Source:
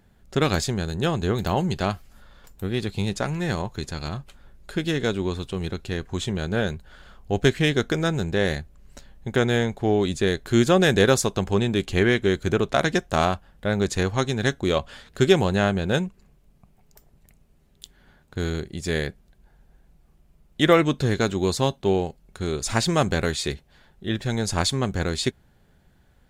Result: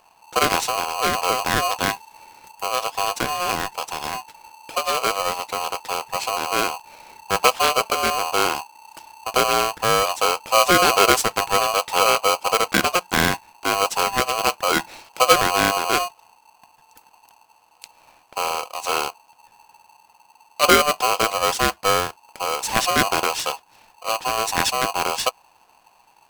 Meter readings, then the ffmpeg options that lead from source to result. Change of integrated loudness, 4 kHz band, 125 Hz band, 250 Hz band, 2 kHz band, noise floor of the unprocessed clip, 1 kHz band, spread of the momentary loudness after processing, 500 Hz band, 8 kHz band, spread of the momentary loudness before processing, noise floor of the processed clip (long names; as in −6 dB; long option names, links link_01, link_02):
+3.5 dB, +6.5 dB, −12.0 dB, −7.0 dB, +5.0 dB, −59 dBFS, +10.5 dB, 12 LU, 0.0 dB, +9.0 dB, 12 LU, −57 dBFS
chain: -af "aeval=exprs='val(0)*sgn(sin(2*PI*890*n/s))':channel_layout=same,volume=2dB"